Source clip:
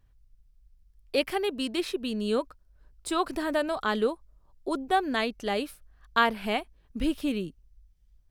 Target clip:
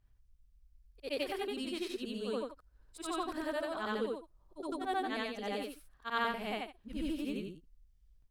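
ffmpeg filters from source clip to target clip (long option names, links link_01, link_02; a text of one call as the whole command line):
ffmpeg -i in.wav -filter_complex "[0:a]afftfilt=real='re':imag='-im':win_size=8192:overlap=0.75,asplit=2[link_01][link_02];[link_02]acompressor=threshold=-42dB:ratio=6,volume=-1dB[link_03];[link_01][link_03]amix=inputs=2:normalize=0,volume=-6dB" out.wav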